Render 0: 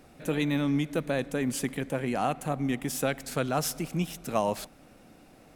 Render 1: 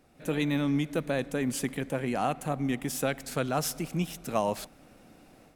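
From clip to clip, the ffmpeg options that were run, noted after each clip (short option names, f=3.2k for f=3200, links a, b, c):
-af "dynaudnorm=f=140:g=3:m=8dB,volume=-8.5dB"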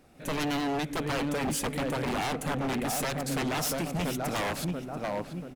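-filter_complex "[0:a]asplit=2[a][b];[b]adelay=686,lowpass=f=1.7k:p=1,volume=-6dB,asplit=2[c][d];[d]adelay=686,lowpass=f=1.7k:p=1,volume=0.51,asplit=2[e][f];[f]adelay=686,lowpass=f=1.7k:p=1,volume=0.51,asplit=2[g][h];[h]adelay=686,lowpass=f=1.7k:p=1,volume=0.51,asplit=2[i][j];[j]adelay=686,lowpass=f=1.7k:p=1,volume=0.51,asplit=2[k][l];[l]adelay=686,lowpass=f=1.7k:p=1,volume=0.51[m];[a][c][e][g][i][k][m]amix=inputs=7:normalize=0,aeval=exprs='0.0398*(abs(mod(val(0)/0.0398+3,4)-2)-1)':c=same,volume=3.5dB"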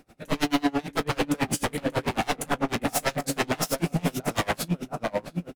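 -filter_complex "[0:a]asplit=2[a][b];[b]aecho=0:1:18|35:0.501|0.422[c];[a][c]amix=inputs=2:normalize=0,aeval=exprs='val(0)*pow(10,-28*(0.5-0.5*cos(2*PI*9.1*n/s))/20)':c=same,volume=7.5dB"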